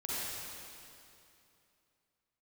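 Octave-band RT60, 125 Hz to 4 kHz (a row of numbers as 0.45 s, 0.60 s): 3.0 s, 2.9 s, 2.8 s, 2.7 s, 2.5 s, 2.4 s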